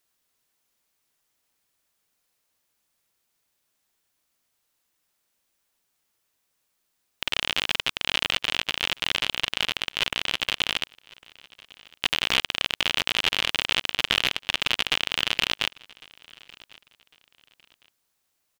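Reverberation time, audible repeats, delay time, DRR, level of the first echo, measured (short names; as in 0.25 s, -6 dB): none, 1, 1.103 s, none, -24.0 dB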